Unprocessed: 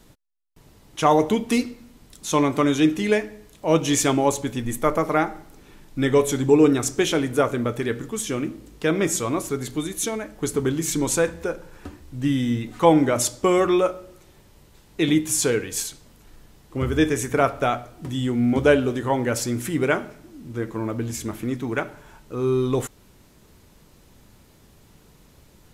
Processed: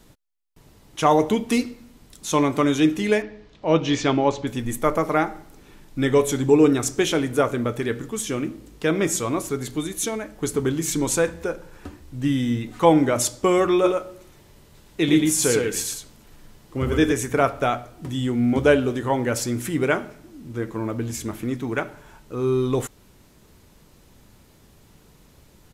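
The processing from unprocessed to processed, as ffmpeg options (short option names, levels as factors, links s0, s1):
-filter_complex "[0:a]asettb=1/sr,asplit=3[s0][s1][s2];[s0]atrim=end=3.224[s3];[s1]atrim=start=3.22:end=4.47,asetpts=PTS-STARTPTS,afade=t=in:d=0.004:c=qsin,afade=t=out:st=1.246:d=0.004:c=qsin,lowpass=f=4900:w=0.5412,lowpass=f=4900:w=1.3066[s4];[s2]atrim=start=4.466[s5];[s3][s4]acrossfade=d=0.004:c1=hsin:c2=qsin[s6];[s6][s5]acrossfade=d=0.004:c1=qsin:c2=hsin,asplit=3[s7][s8][s9];[s7]afade=t=out:st=13.83:d=0.02[s10];[s8]aecho=1:1:113:0.668,afade=t=in:st=13.83:d=0.02,afade=t=out:st=17.11:d=0.02[s11];[s9]afade=t=in:st=17.11:d=0.02[s12];[s10][s11][s12]amix=inputs=3:normalize=0"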